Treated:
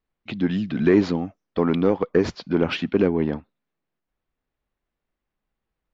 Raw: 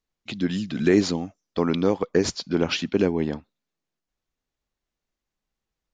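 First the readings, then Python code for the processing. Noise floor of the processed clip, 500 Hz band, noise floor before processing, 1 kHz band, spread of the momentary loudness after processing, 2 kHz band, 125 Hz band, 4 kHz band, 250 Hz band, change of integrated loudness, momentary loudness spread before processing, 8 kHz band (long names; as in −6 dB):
−84 dBFS, +2.0 dB, below −85 dBFS, +1.5 dB, 9 LU, +0.5 dB, +2.0 dB, −4.5 dB, +2.0 dB, +1.5 dB, 10 LU, below −10 dB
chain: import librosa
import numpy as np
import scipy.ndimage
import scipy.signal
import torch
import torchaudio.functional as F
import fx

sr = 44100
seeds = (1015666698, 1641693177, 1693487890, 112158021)

p1 = scipy.signal.sosfilt(scipy.signal.butter(2, 2500.0, 'lowpass', fs=sr, output='sos'), x)
p2 = 10.0 ** (-20.5 / 20.0) * np.tanh(p1 / 10.0 ** (-20.5 / 20.0))
y = p1 + (p2 * librosa.db_to_amplitude(-6.0))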